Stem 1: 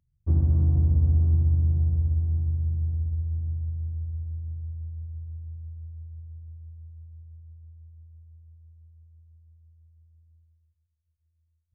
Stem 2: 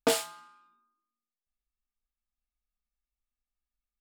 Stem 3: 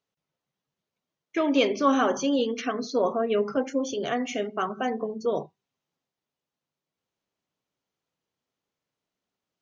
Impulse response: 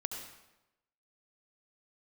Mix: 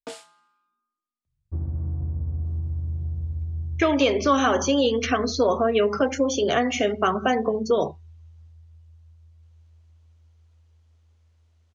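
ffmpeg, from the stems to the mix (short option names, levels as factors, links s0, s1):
-filter_complex "[0:a]adelay=1250,volume=0.251[s0];[1:a]volume=0.251[s1];[2:a]adelay=2450,volume=1.19[s2];[s0][s1][s2]amix=inputs=3:normalize=0,acrossover=split=440|1700[s3][s4][s5];[s3]acompressor=threshold=0.02:ratio=4[s6];[s4]acompressor=threshold=0.0316:ratio=4[s7];[s5]acompressor=threshold=0.0158:ratio=4[s8];[s6][s7][s8]amix=inputs=3:normalize=0,lowpass=f=9500:w=0.5412,lowpass=f=9500:w=1.3066,dynaudnorm=f=350:g=5:m=2.66"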